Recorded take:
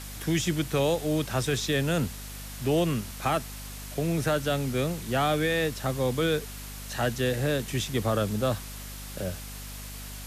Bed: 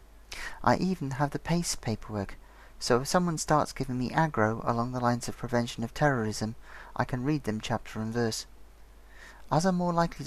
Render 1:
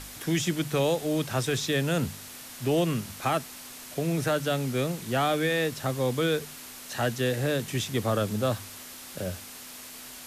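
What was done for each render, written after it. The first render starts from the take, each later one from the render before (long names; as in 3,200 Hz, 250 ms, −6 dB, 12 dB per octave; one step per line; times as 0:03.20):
hum removal 50 Hz, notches 4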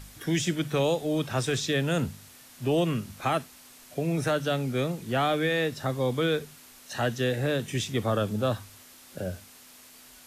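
noise reduction from a noise print 8 dB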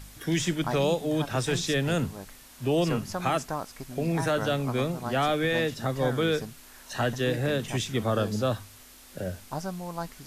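mix in bed −8.5 dB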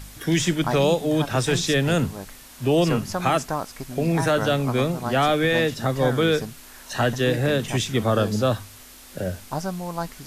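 level +5.5 dB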